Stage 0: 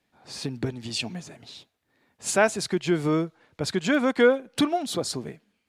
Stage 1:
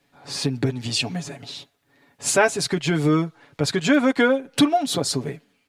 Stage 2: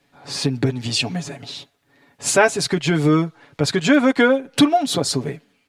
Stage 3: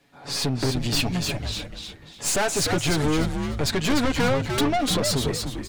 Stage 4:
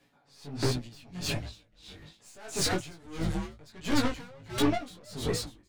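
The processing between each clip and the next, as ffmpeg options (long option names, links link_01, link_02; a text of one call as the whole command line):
ffmpeg -i in.wav -filter_complex "[0:a]aecho=1:1:7.1:0.65,asplit=2[link_01][link_02];[link_02]acompressor=threshold=-29dB:ratio=6,volume=1.5dB[link_03];[link_01][link_03]amix=inputs=2:normalize=0" out.wav
ffmpeg -i in.wav -af "highshelf=frequency=11000:gain=-4.5,volume=3dB" out.wav
ffmpeg -i in.wav -filter_complex "[0:a]aeval=exprs='(tanh(14.1*val(0)+0.45)-tanh(0.45))/14.1':channel_layout=same,asplit=5[link_01][link_02][link_03][link_04][link_05];[link_02]adelay=297,afreqshift=-110,volume=-5dB[link_06];[link_03]adelay=594,afreqshift=-220,volume=-14.9dB[link_07];[link_04]adelay=891,afreqshift=-330,volume=-24.8dB[link_08];[link_05]adelay=1188,afreqshift=-440,volume=-34.7dB[link_09];[link_01][link_06][link_07][link_08][link_09]amix=inputs=5:normalize=0,volume=2.5dB" out.wav
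ffmpeg -i in.wav -af "flanger=delay=16.5:depth=5.3:speed=1.3,aeval=exprs='val(0)*pow(10,-27*(0.5-0.5*cos(2*PI*1.5*n/s))/20)':channel_layout=same" out.wav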